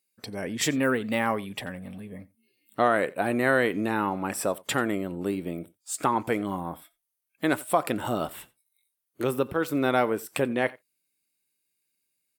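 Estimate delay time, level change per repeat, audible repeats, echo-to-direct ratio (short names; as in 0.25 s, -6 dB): 88 ms, no steady repeat, 1, -23.0 dB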